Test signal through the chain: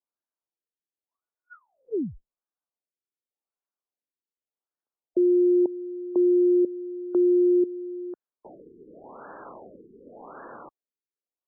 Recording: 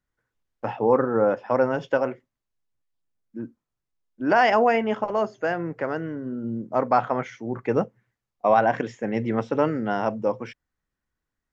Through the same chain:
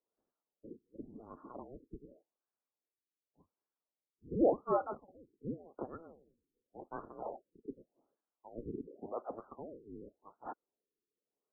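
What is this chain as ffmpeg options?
ffmpeg -i in.wav -filter_complex "[0:a]afftfilt=real='real(if(lt(b,272),68*(eq(floor(b/68),0)*1+eq(floor(b/68),1)*3+eq(floor(b/68),2)*0+eq(floor(b/68),3)*2)+mod(b,68),b),0)':imag='imag(if(lt(b,272),68*(eq(floor(b/68),0)*1+eq(floor(b/68),1)*3+eq(floor(b/68),2)*0+eq(floor(b/68),3)*2)+mod(b,68),b),0)':win_size=2048:overlap=0.75,acrossover=split=230 2200:gain=0.0891 1 0.251[link_01][link_02][link_03];[link_01][link_02][link_03]amix=inputs=3:normalize=0,afftfilt=real='re*lt(b*sr/1024,460*pow(1800/460,0.5+0.5*sin(2*PI*0.88*pts/sr)))':imag='im*lt(b*sr/1024,460*pow(1800/460,0.5+0.5*sin(2*PI*0.88*pts/sr)))':win_size=1024:overlap=0.75,volume=1.5dB" out.wav

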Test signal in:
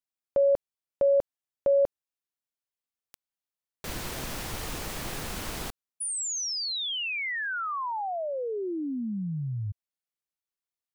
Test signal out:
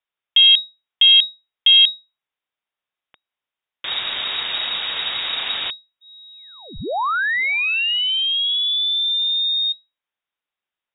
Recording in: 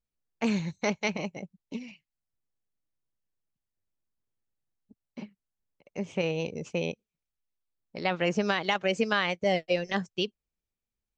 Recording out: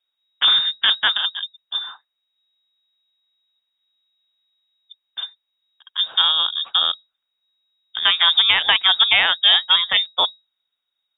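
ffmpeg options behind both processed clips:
ffmpeg -i in.wav -af "aeval=exprs='0.299*(cos(1*acos(clip(val(0)/0.299,-1,1)))-cos(1*PI/2))+0.0422*(cos(4*acos(clip(val(0)/0.299,-1,1)))-cos(4*PI/2))+0.0237*(cos(5*acos(clip(val(0)/0.299,-1,1)))-cos(5*PI/2))':channel_layout=same,lowpass=frequency=3200:width_type=q:width=0.5098,lowpass=frequency=3200:width_type=q:width=0.6013,lowpass=frequency=3200:width_type=q:width=0.9,lowpass=frequency=3200:width_type=q:width=2.563,afreqshift=-3800,volume=8.5dB" out.wav

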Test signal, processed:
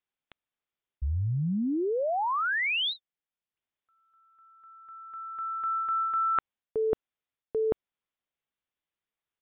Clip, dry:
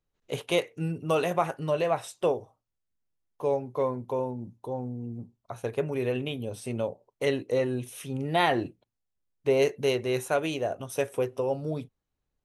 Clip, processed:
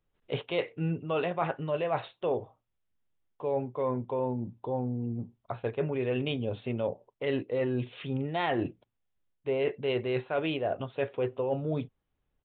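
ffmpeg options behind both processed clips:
ffmpeg -i in.wav -af "areverse,acompressor=threshold=-30dB:ratio=6,areverse,aresample=8000,aresample=44100,volume=3.5dB" out.wav

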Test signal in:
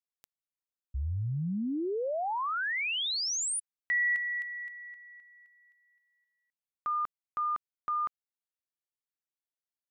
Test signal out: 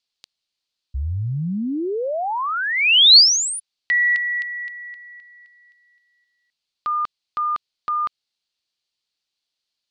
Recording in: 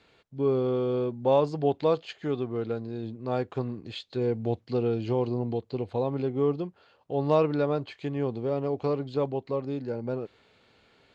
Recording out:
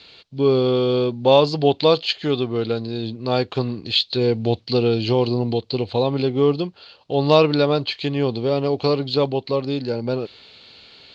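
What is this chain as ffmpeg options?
ffmpeg -i in.wav -af "aexciter=amount=1.8:drive=5.4:freq=2500,lowpass=frequency=4400:width_type=q:width=5.1,volume=8dB" out.wav

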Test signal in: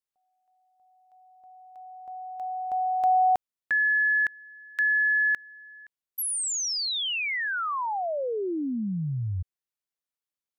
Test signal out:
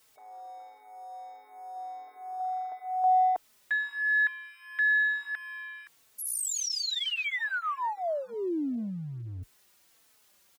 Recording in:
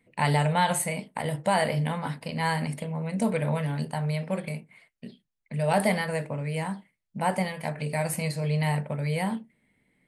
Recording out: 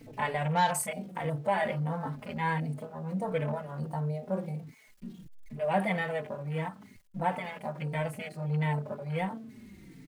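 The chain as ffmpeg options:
ffmpeg -i in.wav -filter_complex "[0:a]aeval=exprs='val(0)+0.5*0.02*sgn(val(0))':channel_layout=same,afwtdn=0.02,lowshelf=frequency=210:gain=-3.5,asplit=2[link_01][link_02];[link_02]adelay=4,afreqshift=-1.5[link_03];[link_01][link_03]amix=inputs=2:normalize=1,volume=-1.5dB" out.wav

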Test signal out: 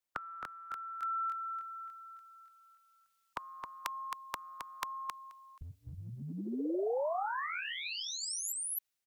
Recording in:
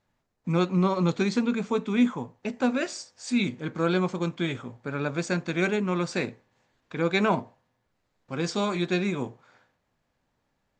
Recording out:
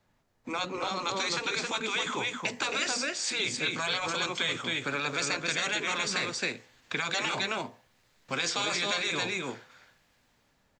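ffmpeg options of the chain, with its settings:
ffmpeg -i in.wav -filter_complex "[0:a]acrossover=split=420|1700[link_01][link_02][link_03];[link_03]dynaudnorm=framelen=780:gausssize=3:maxgain=10dB[link_04];[link_01][link_02][link_04]amix=inputs=3:normalize=0,aecho=1:1:267:0.447,afftfilt=real='re*lt(hypot(re,im),0.224)':imag='im*lt(hypot(re,im),0.224)':win_size=1024:overlap=0.75,acrossover=split=290|3400[link_05][link_06][link_07];[link_05]acompressor=threshold=-49dB:ratio=4[link_08];[link_06]acompressor=threshold=-34dB:ratio=4[link_09];[link_07]acompressor=threshold=-38dB:ratio=4[link_10];[link_08][link_09][link_10]amix=inputs=3:normalize=0,volume=4dB" out.wav

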